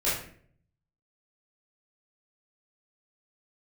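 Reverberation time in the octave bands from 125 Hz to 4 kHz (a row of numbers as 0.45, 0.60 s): 1.1, 0.70, 0.65, 0.45, 0.50, 0.40 s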